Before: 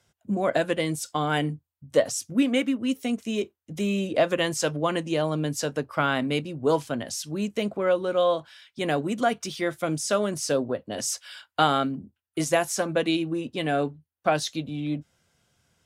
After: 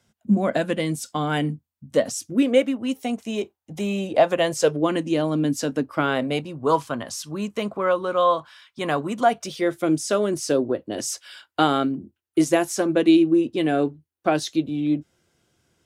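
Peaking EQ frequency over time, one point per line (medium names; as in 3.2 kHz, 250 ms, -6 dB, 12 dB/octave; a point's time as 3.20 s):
peaking EQ +11.5 dB 0.57 oct
2.06 s 220 Hz
2.79 s 810 Hz
4.30 s 810 Hz
4.96 s 270 Hz
5.92 s 270 Hz
6.54 s 1.1 kHz
9.12 s 1.1 kHz
9.77 s 340 Hz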